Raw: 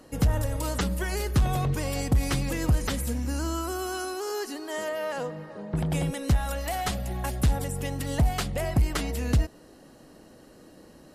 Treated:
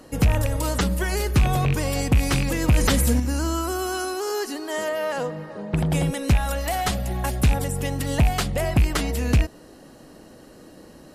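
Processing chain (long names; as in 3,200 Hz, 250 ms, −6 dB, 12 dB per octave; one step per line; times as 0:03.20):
loose part that buzzes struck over −21 dBFS, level −20 dBFS
in parallel at −11.5 dB: wave folding −19.5 dBFS
0:02.68–0:03.20: on the sum: envelope flattener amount 50%
level +3 dB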